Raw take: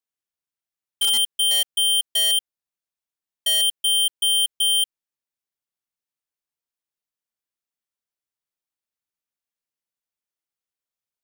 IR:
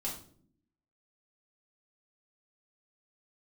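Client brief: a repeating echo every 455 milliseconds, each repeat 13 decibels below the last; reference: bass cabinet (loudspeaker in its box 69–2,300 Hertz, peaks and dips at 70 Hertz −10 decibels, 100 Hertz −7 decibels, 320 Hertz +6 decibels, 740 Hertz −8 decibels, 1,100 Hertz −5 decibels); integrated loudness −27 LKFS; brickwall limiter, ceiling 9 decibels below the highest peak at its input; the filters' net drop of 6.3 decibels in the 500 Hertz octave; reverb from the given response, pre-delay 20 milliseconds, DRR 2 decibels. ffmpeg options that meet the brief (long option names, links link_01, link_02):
-filter_complex "[0:a]equalizer=frequency=500:width_type=o:gain=-5,alimiter=level_in=3dB:limit=-24dB:level=0:latency=1,volume=-3dB,aecho=1:1:455|910|1365:0.224|0.0493|0.0108,asplit=2[link_01][link_02];[1:a]atrim=start_sample=2205,adelay=20[link_03];[link_02][link_03]afir=irnorm=-1:irlink=0,volume=-3.5dB[link_04];[link_01][link_04]amix=inputs=2:normalize=0,highpass=frequency=69:width=0.5412,highpass=frequency=69:width=1.3066,equalizer=frequency=70:width_type=q:width=4:gain=-10,equalizer=frequency=100:width_type=q:width=4:gain=-7,equalizer=frequency=320:width_type=q:width=4:gain=6,equalizer=frequency=740:width_type=q:width=4:gain=-8,equalizer=frequency=1100:width_type=q:width=4:gain=-5,lowpass=frequency=2300:width=0.5412,lowpass=frequency=2300:width=1.3066,volume=10dB"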